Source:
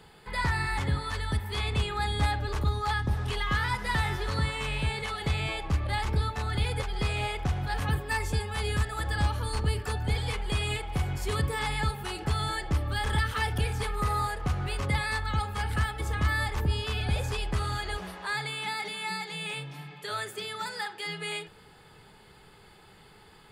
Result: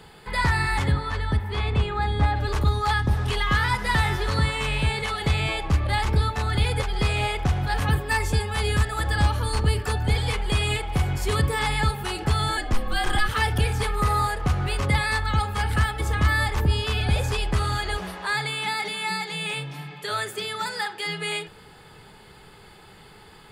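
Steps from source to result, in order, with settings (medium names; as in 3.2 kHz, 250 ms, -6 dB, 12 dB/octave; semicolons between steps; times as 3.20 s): 0.91–2.35 s: low-pass 2.5 kHz -> 1.3 kHz 6 dB/octave; 12.57–13.29 s: frequency shift -70 Hz; trim +6 dB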